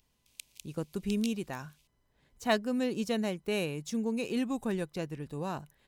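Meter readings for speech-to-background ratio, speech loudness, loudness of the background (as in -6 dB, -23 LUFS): 14.5 dB, -33.5 LUFS, -48.0 LUFS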